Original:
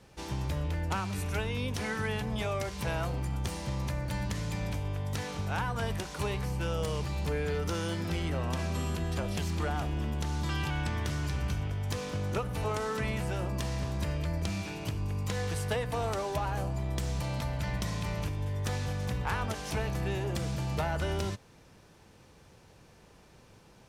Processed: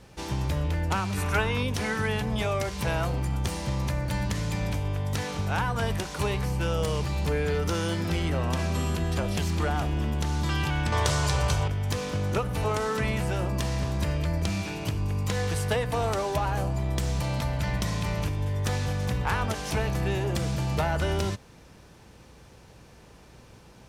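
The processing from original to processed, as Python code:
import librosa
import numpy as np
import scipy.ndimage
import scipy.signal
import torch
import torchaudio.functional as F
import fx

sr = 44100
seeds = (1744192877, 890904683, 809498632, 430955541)

y = fx.peak_eq(x, sr, hz=1200.0, db=8.5, octaves=1.4, at=(1.17, 1.63))
y = fx.add_hum(y, sr, base_hz=60, snr_db=31)
y = fx.graphic_eq(y, sr, hz=(125, 250, 500, 1000, 4000, 8000), db=(5, -11, 10, 8, 6, 10), at=(10.92, 11.68))
y = F.gain(torch.from_numpy(y), 5.0).numpy()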